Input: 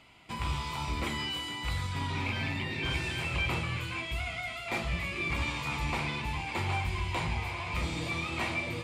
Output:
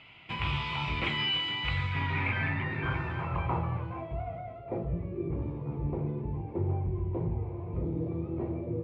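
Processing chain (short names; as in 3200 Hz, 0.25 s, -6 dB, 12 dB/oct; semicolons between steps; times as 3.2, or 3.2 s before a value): low-pass sweep 2800 Hz -> 410 Hz, 1.63–5.07; on a send: reverb, pre-delay 3 ms, DRR 23 dB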